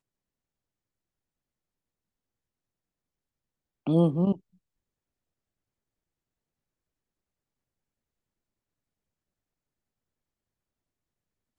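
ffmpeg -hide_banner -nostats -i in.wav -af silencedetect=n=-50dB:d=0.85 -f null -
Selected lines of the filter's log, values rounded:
silence_start: 0.00
silence_end: 3.86 | silence_duration: 3.86
silence_start: 4.38
silence_end: 11.59 | silence_duration: 7.21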